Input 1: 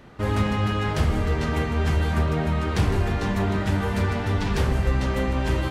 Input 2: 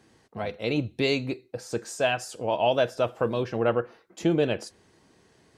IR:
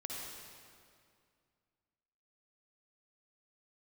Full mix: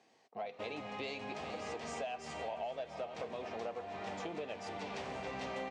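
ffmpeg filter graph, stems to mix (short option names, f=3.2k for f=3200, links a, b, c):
-filter_complex "[0:a]adelay=400,volume=2.5dB,asplit=2[a][b];[b]volume=-19dB[c];[1:a]asoftclip=type=tanh:threshold=-15.5dB,volume=-7dB,asplit=3[d][e][f];[e]volume=-14dB[g];[f]apad=whole_len=269324[h];[a][h]sidechaincompress=threshold=-46dB:ratio=10:attack=11:release=1280[i];[c][g]amix=inputs=2:normalize=0,aecho=0:1:429:1[j];[i][d][j]amix=inputs=3:normalize=0,highpass=300,equalizer=f=330:t=q:w=4:g=-6,equalizer=f=720:t=q:w=4:g=9,equalizer=f=1.5k:t=q:w=4:g=-6,equalizer=f=2.4k:t=q:w=4:g=4,lowpass=f=7.3k:w=0.5412,lowpass=f=7.3k:w=1.3066,acompressor=threshold=-39dB:ratio=5"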